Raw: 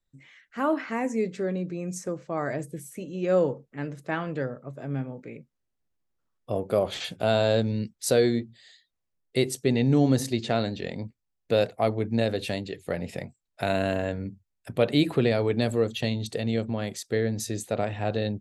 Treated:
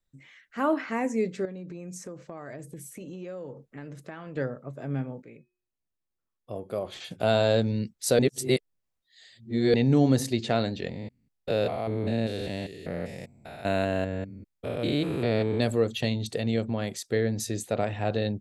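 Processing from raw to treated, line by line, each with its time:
1.45–4.37 s: compression, threshold -36 dBFS
5.22–7.11 s: feedback comb 360 Hz, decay 0.46 s, harmonics odd
8.19–9.74 s: reverse
10.89–15.60 s: spectrogram pixelated in time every 200 ms

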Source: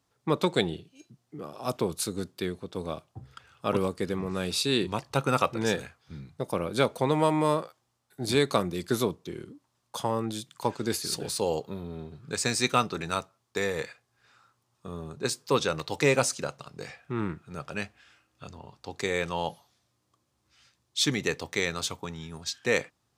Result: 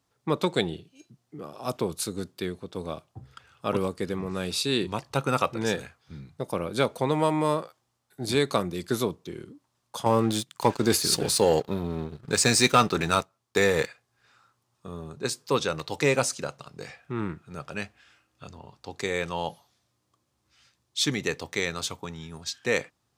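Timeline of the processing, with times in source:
10.06–13.87 s: waveshaping leveller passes 2

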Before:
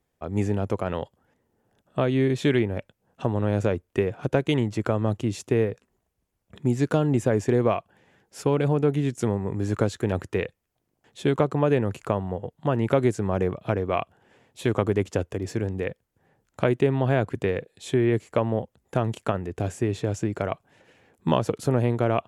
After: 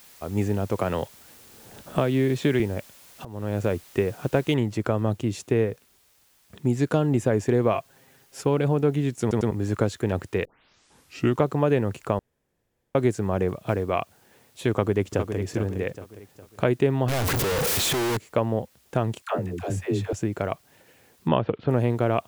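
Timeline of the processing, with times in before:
0.78–2.60 s: three bands compressed up and down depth 70%
3.25–3.86 s: fade in equal-power, from -23 dB
4.54 s: noise floor step -51 dB -62 dB
7.73–8.41 s: comb 7.5 ms
9.21 s: stutter in place 0.10 s, 3 plays
10.45 s: tape start 0.97 s
12.19–12.95 s: room tone
13.48–13.90 s: block-companded coder 7-bit
14.71–15.37 s: echo throw 410 ms, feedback 40%, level -7.5 dB
17.08–18.17 s: one-bit comparator
19.22–20.13 s: phase dispersion lows, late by 111 ms, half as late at 440 Hz
21.28–21.69 s: steep low-pass 3.4 kHz

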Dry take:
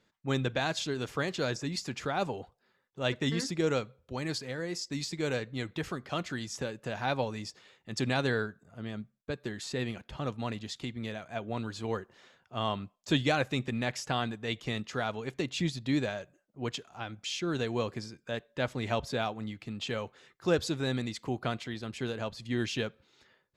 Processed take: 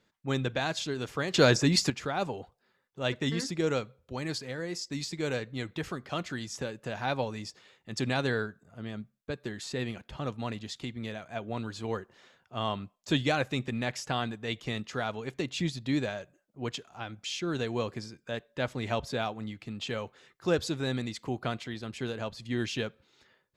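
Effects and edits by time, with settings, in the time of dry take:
1.34–1.90 s: gain +10.5 dB

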